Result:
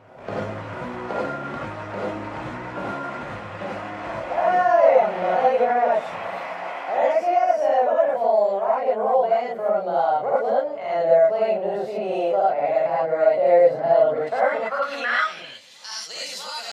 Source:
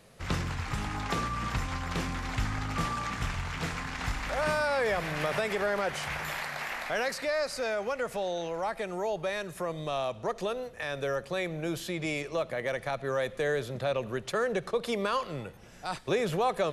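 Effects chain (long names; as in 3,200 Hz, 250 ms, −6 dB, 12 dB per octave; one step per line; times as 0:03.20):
pitch shifter +3 semitones
reverb whose tail is shaped and stops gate 130 ms rising, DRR −7 dB
band-pass filter sweep 600 Hz → 5,600 Hz, 0:14.17–0:16.04
on a send: backwards echo 652 ms −19.5 dB
on the sum: level +8.5 dB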